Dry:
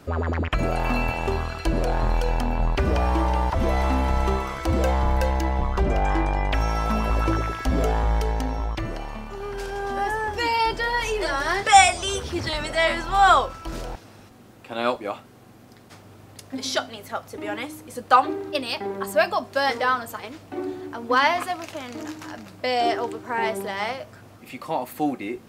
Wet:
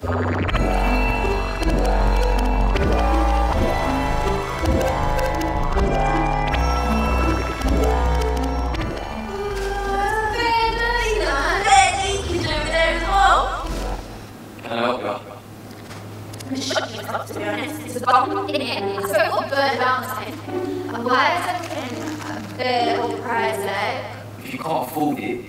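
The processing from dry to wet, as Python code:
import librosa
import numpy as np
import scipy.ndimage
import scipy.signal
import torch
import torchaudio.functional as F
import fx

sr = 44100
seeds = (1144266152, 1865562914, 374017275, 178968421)

y = fx.frame_reverse(x, sr, frame_ms=137.0)
y = y + 10.0 ** (-14.5 / 20.0) * np.pad(y, (int(219 * sr / 1000.0), 0))[:len(y)]
y = fx.band_squash(y, sr, depth_pct=40)
y = F.gain(torch.from_numpy(y), 7.0).numpy()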